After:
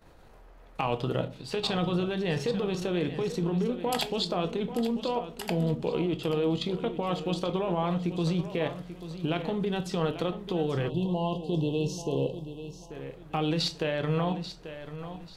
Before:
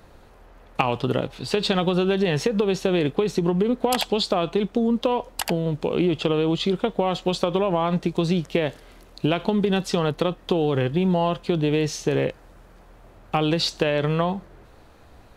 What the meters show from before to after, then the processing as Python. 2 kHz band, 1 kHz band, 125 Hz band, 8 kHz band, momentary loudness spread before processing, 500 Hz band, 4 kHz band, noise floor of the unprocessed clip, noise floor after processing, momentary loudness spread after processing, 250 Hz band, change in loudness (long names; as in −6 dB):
−7.5 dB, −7.0 dB, −5.0 dB, −8.0 dB, 4 LU, −7.0 dB, −6.5 dB, −50 dBFS, −51 dBFS, 11 LU, −6.5 dB, −7.0 dB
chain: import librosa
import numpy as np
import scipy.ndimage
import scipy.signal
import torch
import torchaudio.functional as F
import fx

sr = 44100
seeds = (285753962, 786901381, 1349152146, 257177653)

p1 = fx.level_steps(x, sr, step_db=13)
p2 = p1 + fx.echo_feedback(p1, sr, ms=838, feedback_pct=29, wet_db=-12.0, dry=0)
p3 = fx.room_shoebox(p2, sr, seeds[0], volume_m3=190.0, walls='furnished', distance_m=0.62)
p4 = fx.spec_erase(p3, sr, start_s=10.9, length_s=2.01, low_hz=1100.0, high_hz=2600.0)
y = p4 * librosa.db_to_amplitude(-3.0)